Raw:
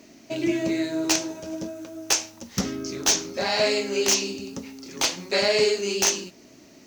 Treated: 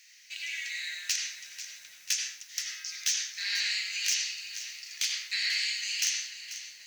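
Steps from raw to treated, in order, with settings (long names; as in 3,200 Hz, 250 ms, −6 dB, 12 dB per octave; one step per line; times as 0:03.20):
Chebyshev high-pass filter 1,800 Hz, order 4
downward compressor 2 to 1, threshold −32 dBFS, peak gain reduction 9 dB
convolution reverb RT60 0.65 s, pre-delay 73 ms, DRR 0 dB
feedback echo at a low word length 490 ms, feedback 55%, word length 9 bits, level −12.5 dB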